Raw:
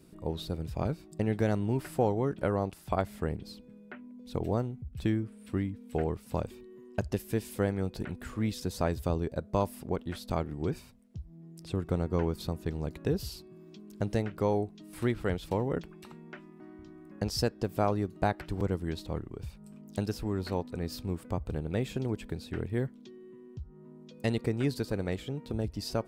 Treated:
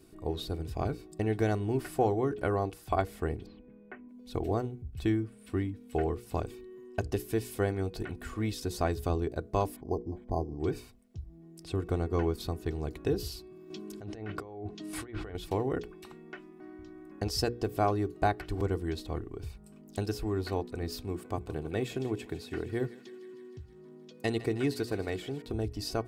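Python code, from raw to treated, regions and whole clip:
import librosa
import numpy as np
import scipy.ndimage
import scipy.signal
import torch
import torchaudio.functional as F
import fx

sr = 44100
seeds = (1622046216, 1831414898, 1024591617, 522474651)

y = fx.chain(x, sr, fx.lowpass(hz=2400.0, slope=24),
    fx.notch(hz=1400.0, q=11.0),
    fx.band_squash(depth_pct=40), at=(3.46, 4.09))
y = fx.chain(y, sr, fx.brickwall_bandstop(low_hz=1100.0, high_hz=14000.0),
    fx.resample_linear(factor=8), at=(9.76, 10.6))
y = fx.chain(y, sr, fx.highpass(hz=62.0, slope=6),
    fx.env_lowpass_down(base_hz=2500.0, full_db=-24.5),
    fx.over_compress(threshold_db=-40.0, ratio=-1.0), at=(13.7, 15.35))
y = fx.chain(y, sr, fx.highpass(hz=99.0, slope=12),
    fx.echo_thinned(ms=157, feedback_pct=75, hz=800.0, wet_db=-15), at=(21.04, 25.42))
y = fx.hum_notches(y, sr, base_hz=60, count=8)
y = y + 0.51 * np.pad(y, (int(2.7 * sr / 1000.0), 0))[:len(y)]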